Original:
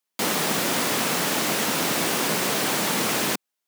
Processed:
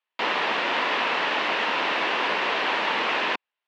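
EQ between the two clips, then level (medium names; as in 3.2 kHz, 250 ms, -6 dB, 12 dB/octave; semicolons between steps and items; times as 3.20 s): cabinet simulation 430–3600 Hz, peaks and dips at 980 Hz +6 dB, 1.8 kHz +4 dB, 2.7 kHz +5 dB; 0.0 dB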